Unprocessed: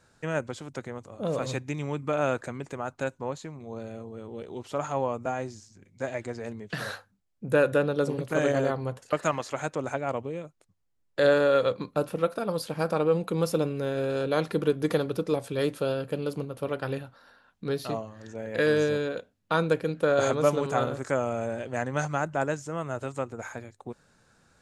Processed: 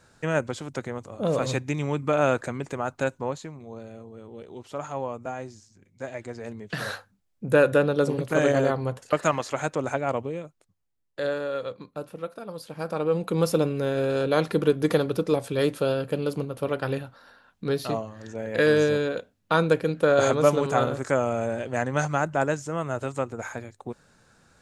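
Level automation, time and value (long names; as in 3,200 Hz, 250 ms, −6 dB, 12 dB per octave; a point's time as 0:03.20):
0:03.17 +4.5 dB
0:03.84 −3 dB
0:06.12 −3 dB
0:06.94 +3.5 dB
0:10.21 +3.5 dB
0:11.40 −8 dB
0:12.56 −8 dB
0:13.39 +3.5 dB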